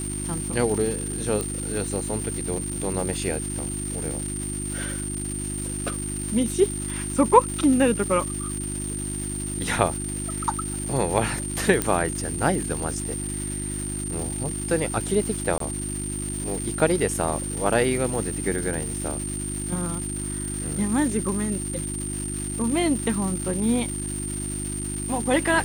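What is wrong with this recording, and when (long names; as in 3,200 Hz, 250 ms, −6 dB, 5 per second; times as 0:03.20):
surface crackle 530 per second −30 dBFS
mains hum 50 Hz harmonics 7 −32 dBFS
whistle 8,900 Hz −31 dBFS
0:01.41: click −13 dBFS
0:11.82: click −7 dBFS
0:15.58–0:15.60: drop-out 23 ms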